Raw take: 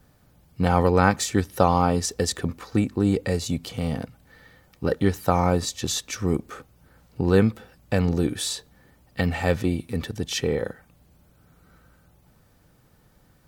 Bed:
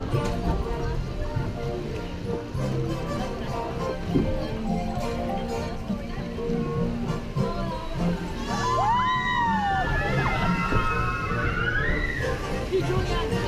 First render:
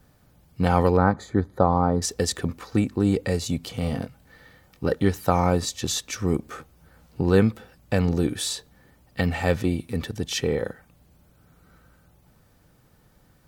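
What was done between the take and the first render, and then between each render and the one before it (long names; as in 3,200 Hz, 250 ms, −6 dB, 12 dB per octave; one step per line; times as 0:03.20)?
0:00.97–0:02.02: moving average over 16 samples
0:03.80–0:04.86: double-tracking delay 22 ms −8 dB
0:06.41–0:07.22: double-tracking delay 13 ms −4.5 dB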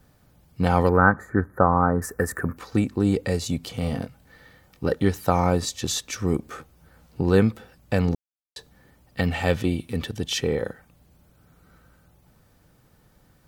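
0:00.89–0:02.57: drawn EQ curve 840 Hz 0 dB, 1,600 Hz +12 dB, 3,400 Hz −27 dB, 12,000 Hz +5 dB
0:08.15–0:08.56: silence
0:09.26–0:10.35: parametric band 3,100 Hz +5.5 dB 0.47 octaves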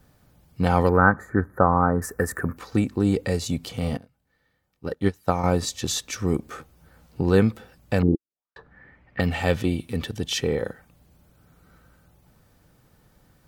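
0:03.97–0:05.44: expander for the loud parts 2.5 to 1, over −29 dBFS
0:08.02–0:09.20: envelope-controlled low-pass 340–2,300 Hz down, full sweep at −27.5 dBFS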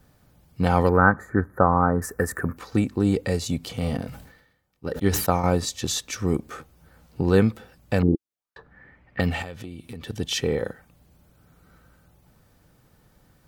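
0:03.60–0:05.55: level that may fall only so fast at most 70 dB per second
0:09.42–0:10.07: downward compressor 5 to 1, threshold −34 dBFS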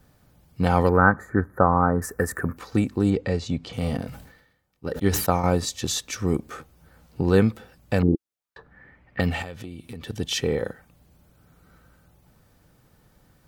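0:03.10–0:03.73: high-frequency loss of the air 120 metres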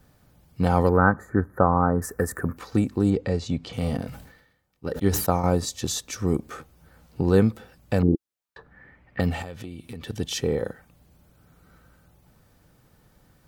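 dynamic equaliser 2,400 Hz, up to −6 dB, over −39 dBFS, Q 0.81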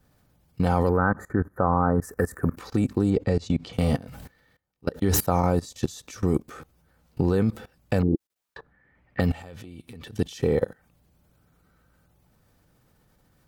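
in parallel at +1 dB: brickwall limiter −14.5 dBFS, peak gain reduction 11 dB
on the sum: output level in coarse steps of 21 dB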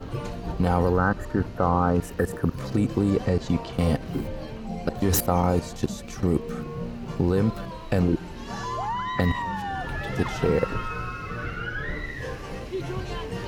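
mix in bed −6.5 dB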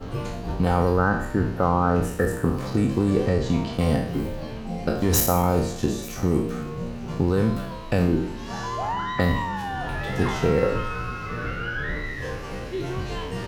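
peak hold with a decay on every bin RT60 0.64 s
single-tap delay 880 ms −21 dB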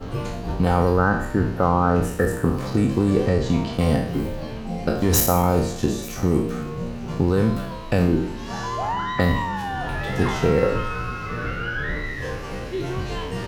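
level +2 dB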